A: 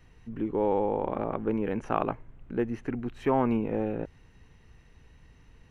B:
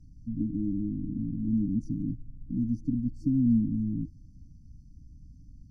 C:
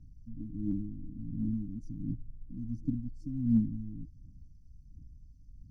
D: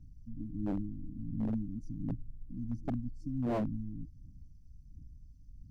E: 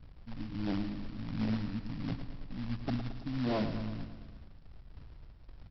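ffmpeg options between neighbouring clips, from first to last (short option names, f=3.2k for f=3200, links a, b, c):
-af "aemphasis=mode=reproduction:type=75fm,afftfilt=real='re*(1-between(b*sr/4096,320,4400))':imag='im*(1-between(b*sr/4096,320,4400))':win_size=4096:overlap=0.75,equalizer=f=540:t=o:w=0.86:g=-8.5,volume=5dB"
-af "aphaser=in_gain=1:out_gain=1:delay=2.3:decay=0.64:speed=1.4:type=triangular,volume=-9dB"
-af "aeval=exprs='0.0473*(abs(mod(val(0)/0.0473+3,4)-2)-1)':c=same"
-af "aresample=11025,acrusher=bits=3:mode=log:mix=0:aa=0.000001,aresample=44100,aecho=1:1:111|222|333|444|555|666|777:0.316|0.19|0.114|0.0683|0.041|0.0246|0.0148"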